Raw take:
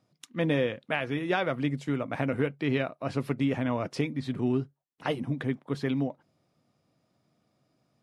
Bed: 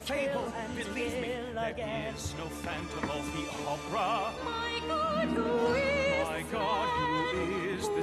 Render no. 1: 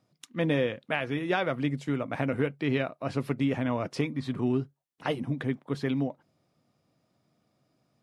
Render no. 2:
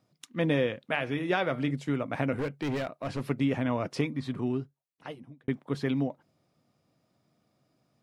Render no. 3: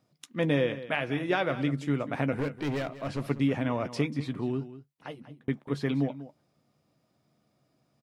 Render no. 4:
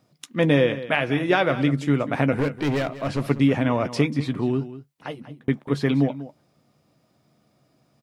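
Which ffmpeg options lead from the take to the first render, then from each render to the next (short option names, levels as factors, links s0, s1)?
-filter_complex "[0:a]asettb=1/sr,asplit=3[s0][s1][s2];[s0]atrim=end=3.984[s3];[s1]atrim=start=3.98:end=4.45,asetpts=PTS-STARTPTS,afade=t=in:d=0.004:c=qsin,afade=t=out:st=0.466:d=0.004:c=qsin,equalizer=f=1100:t=o:w=0.44:g=7[s4];[s2]atrim=start=4.446[s5];[s3][s4]acrossfade=d=0.004:c1=hsin:c2=qsin[s6];[s6][s5]acrossfade=d=0.004:c1=qsin:c2=hsin"
-filter_complex "[0:a]asettb=1/sr,asplit=3[s0][s1][s2];[s0]atrim=end=0.874[s3];[s1]atrim=start=0.87:end=1.71,asetpts=PTS-STARTPTS,afade=t=in:d=0.004:c=qsin,afade=t=out:st=0.836:d=0.004:c=qsin,bandreject=f=150.9:t=h:w=4,bandreject=f=301.8:t=h:w=4,bandreject=f=452.7:t=h:w=4,bandreject=f=603.6:t=h:w=4,bandreject=f=754.5:t=h:w=4,bandreject=f=905.4:t=h:w=4,bandreject=f=1056.3:t=h:w=4,bandreject=f=1207.2:t=h:w=4,bandreject=f=1358.1:t=h:w=4,bandreject=f=1509:t=h:w=4,bandreject=f=1659.9:t=h:w=4,bandreject=f=1810.8:t=h:w=4,bandreject=f=1961.7:t=h:w=4,bandreject=f=2112.6:t=h:w=4,bandreject=f=2263.5:t=h:w=4,bandreject=f=2414.4:t=h:w=4,bandreject=f=2565.3:t=h:w=4,bandreject=f=2716.2:t=h:w=4,bandreject=f=2867.1:t=h:w=4,bandreject=f=3018:t=h:w=4,bandreject=f=3168.9:t=h:w=4,bandreject=f=3319.8:t=h:w=4,bandreject=f=3470.7:t=h:w=4,bandreject=f=3621.6:t=h:w=4,bandreject=f=3772.5:t=h:w=4,bandreject=f=3923.4:t=h:w=4,bandreject=f=4074.3:t=h:w=4,bandreject=f=4225.2:t=h:w=4,bandreject=f=4376.1:t=h:w=4,bandreject=f=4527:t=h:w=4,bandreject=f=4677.9:t=h:w=4,bandreject=f=4828.8:t=h:w=4,bandreject=f=4979.7:t=h:w=4,bandreject=f=5130.6:t=h:w=4,bandreject=f=5281.5:t=h:w=4,bandreject=f=5432.4:t=h:w=4[s4];[s2]atrim=start=1.706[s5];[s3][s4]acrossfade=d=0.004:c1=hsin:c2=qsin[s6];[s6][s5]acrossfade=d=0.004:c1=qsin:c2=hsin,asettb=1/sr,asplit=3[s7][s8][s9];[s7]atrim=end=2.344[s10];[s8]atrim=start=2.34:end=3.23,asetpts=PTS-STARTPTS,afade=t=in:d=0.004:c=qsin,afade=t=out:st=0.886:d=0.004:c=qsin,asoftclip=type=hard:threshold=0.0447[s11];[s9]atrim=start=3.226[s12];[s10][s11]acrossfade=d=0.004:c1=hsin:c2=qsin[s13];[s13][s12]acrossfade=d=0.004:c1=qsin:c2=hsin,asplit=2[s14][s15];[s14]atrim=end=5.48,asetpts=PTS-STARTPTS,afade=t=out:st=4.06:d=1.42[s16];[s15]atrim=start=5.48,asetpts=PTS-STARTPTS,afade=t=in:d=0.004:c=hsin[s17];[s16][s17]concat=n=2:v=0:a=1"
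-filter_complex "[0:a]asplit=2[s0][s1];[s1]adelay=14,volume=0.2[s2];[s0][s2]amix=inputs=2:normalize=0,aecho=1:1:192:0.188"
-af "volume=2.37"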